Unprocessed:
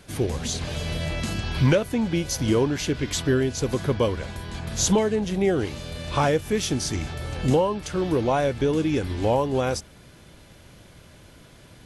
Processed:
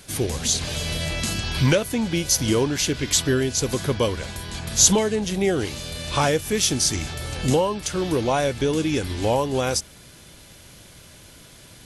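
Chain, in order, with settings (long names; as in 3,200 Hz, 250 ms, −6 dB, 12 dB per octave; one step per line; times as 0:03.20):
high-shelf EQ 3,200 Hz +11.5 dB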